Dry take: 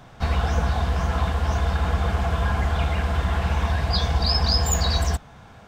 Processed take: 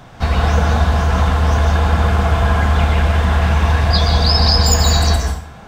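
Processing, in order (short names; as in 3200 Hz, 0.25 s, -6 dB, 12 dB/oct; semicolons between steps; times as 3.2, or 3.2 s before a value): plate-style reverb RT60 0.56 s, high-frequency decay 0.85×, pre-delay 0.12 s, DRR 2 dB; gain +6.5 dB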